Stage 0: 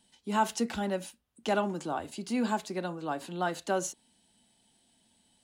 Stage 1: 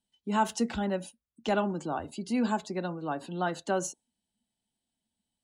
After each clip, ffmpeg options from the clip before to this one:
-af "afftdn=nr=19:nf=-50,lowshelf=f=140:g=7.5"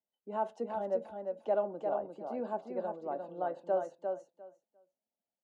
-filter_complex "[0:a]bandpass=f=580:t=q:w=3.4:csg=0,asplit=2[a][b];[b]aecho=0:1:351|702|1053:0.562|0.09|0.0144[c];[a][c]amix=inputs=2:normalize=0,volume=2dB"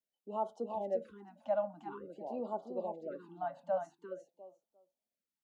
-af "afftfilt=real='re*(1-between(b*sr/1024,370*pow(2100/370,0.5+0.5*sin(2*PI*0.48*pts/sr))/1.41,370*pow(2100/370,0.5+0.5*sin(2*PI*0.48*pts/sr))*1.41))':imag='im*(1-between(b*sr/1024,370*pow(2100/370,0.5+0.5*sin(2*PI*0.48*pts/sr))/1.41,370*pow(2100/370,0.5+0.5*sin(2*PI*0.48*pts/sr))*1.41))':win_size=1024:overlap=0.75,volume=-2dB"

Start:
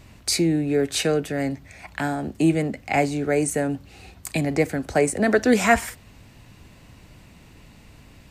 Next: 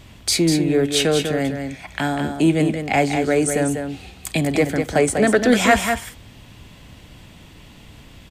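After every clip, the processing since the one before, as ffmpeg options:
-filter_complex "[0:a]equalizer=f=3.3k:w=6.8:g=11,asplit=2[a][b];[b]asoftclip=type=tanh:threshold=-16dB,volume=-6dB[c];[a][c]amix=inputs=2:normalize=0,aecho=1:1:196:0.473"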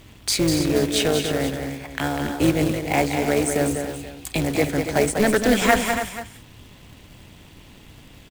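-af "acrusher=bits=3:mode=log:mix=0:aa=0.000001,tremolo=f=210:d=0.667,aecho=1:1:283:0.335"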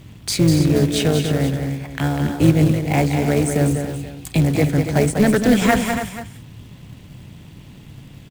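-af "equalizer=f=140:w=0.9:g=12.5,volume=-1dB"

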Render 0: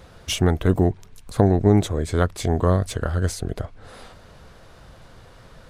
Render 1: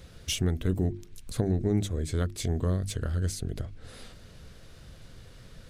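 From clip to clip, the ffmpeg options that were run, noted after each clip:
-af "equalizer=f=890:t=o:w=1.7:g=-13,bandreject=f=50:t=h:w=6,bandreject=f=100:t=h:w=6,bandreject=f=150:t=h:w=6,bandreject=f=200:t=h:w=6,bandreject=f=250:t=h:w=6,bandreject=f=300:t=h:w=6,bandreject=f=350:t=h:w=6,acompressor=threshold=-33dB:ratio=1.5"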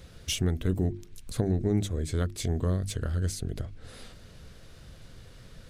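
-af anull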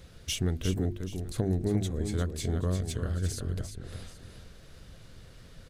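-af "aecho=1:1:350|781:0.422|0.141,volume=-2dB"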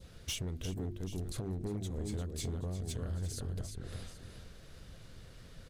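-af "adynamicequalizer=threshold=0.00178:dfrequency=1800:dqfactor=1.2:tfrequency=1800:tqfactor=1.2:attack=5:release=100:ratio=0.375:range=2:mode=cutabove:tftype=bell,acompressor=threshold=-30dB:ratio=8,volume=29.5dB,asoftclip=hard,volume=-29.5dB,volume=-2dB"

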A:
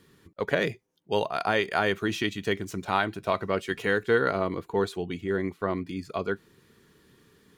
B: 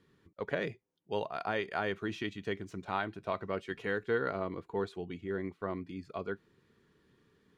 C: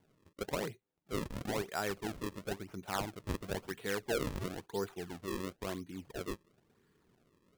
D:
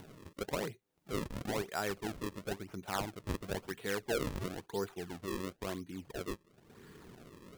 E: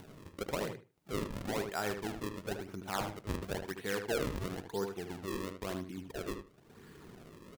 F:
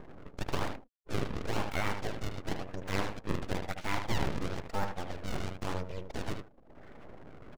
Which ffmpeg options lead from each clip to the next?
-af "aemphasis=mode=reproduction:type=50fm,volume=-8.5dB"
-af "acrusher=samples=34:mix=1:aa=0.000001:lfo=1:lforange=54.4:lforate=0.98,volume=-2.5dB"
-af "acompressor=mode=upward:threshold=-39dB:ratio=2.5"
-filter_complex "[0:a]asplit=2[a][b];[b]adelay=76,lowpass=f=2.9k:p=1,volume=-6.5dB,asplit=2[c][d];[d]adelay=76,lowpass=f=2.9k:p=1,volume=0.18,asplit=2[e][f];[f]adelay=76,lowpass=f=2.9k:p=1,volume=0.18[g];[a][c][e][g]amix=inputs=4:normalize=0"
-filter_complex "[0:a]afftfilt=real='re*gte(hypot(re,im),0.00224)':imag='im*gte(hypot(re,im),0.00224)':win_size=1024:overlap=0.75,acrossover=split=2900[a][b];[b]acompressor=threshold=-53dB:ratio=4:attack=1:release=60[c];[a][c]amix=inputs=2:normalize=0,aeval=exprs='abs(val(0))':c=same,volume=6dB"

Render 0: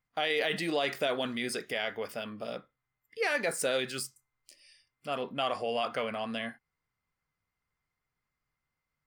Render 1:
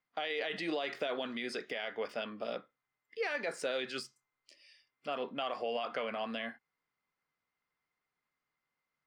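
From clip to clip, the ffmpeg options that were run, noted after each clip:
-filter_complex "[0:a]alimiter=level_in=1.5dB:limit=-24dB:level=0:latency=1:release=157,volume=-1.5dB,acrossover=split=190 5900:gain=0.126 1 0.0891[a][b][c];[a][b][c]amix=inputs=3:normalize=0"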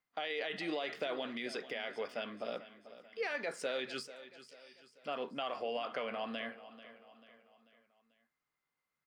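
-af "aecho=1:1:440|880|1320|1760:0.178|0.0836|0.0393|0.0185,volume=-2dB"

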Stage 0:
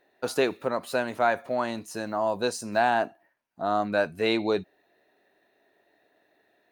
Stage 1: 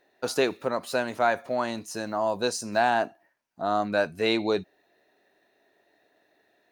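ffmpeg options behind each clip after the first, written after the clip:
-af "equalizer=f=5.7k:w=1.4:g=5"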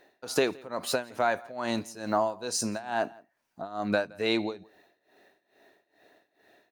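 -filter_complex "[0:a]acompressor=threshold=-28dB:ratio=6,tremolo=f=2.3:d=0.89,asplit=2[a][b];[b]adelay=169.1,volume=-24dB,highshelf=f=4k:g=-3.8[c];[a][c]amix=inputs=2:normalize=0,volume=7dB"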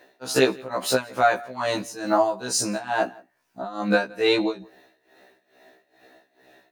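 -af "afftfilt=real='re*1.73*eq(mod(b,3),0)':imag='im*1.73*eq(mod(b,3),0)':win_size=2048:overlap=0.75,volume=9dB"

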